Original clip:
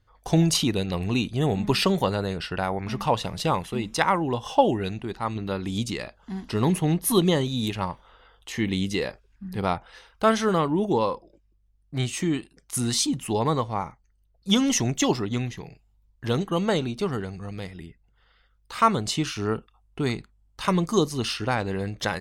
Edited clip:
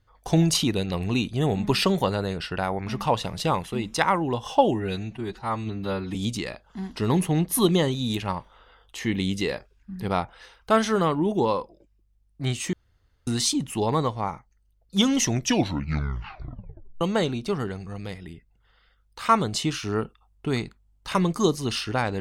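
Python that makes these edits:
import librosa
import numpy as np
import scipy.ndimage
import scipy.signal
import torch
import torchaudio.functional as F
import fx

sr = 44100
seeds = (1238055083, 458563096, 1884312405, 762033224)

y = fx.edit(x, sr, fx.stretch_span(start_s=4.74, length_s=0.94, factor=1.5),
    fx.room_tone_fill(start_s=12.26, length_s=0.54),
    fx.tape_stop(start_s=14.83, length_s=1.71), tone=tone)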